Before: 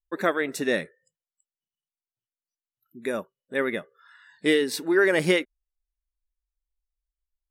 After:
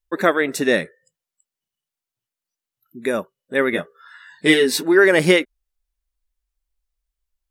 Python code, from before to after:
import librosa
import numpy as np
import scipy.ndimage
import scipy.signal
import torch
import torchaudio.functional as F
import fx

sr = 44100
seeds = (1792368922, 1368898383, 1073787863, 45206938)

y = fx.doubler(x, sr, ms=12.0, db=-2, at=(3.72, 4.83))
y = y * librosa.db_to_amplitude(7.0)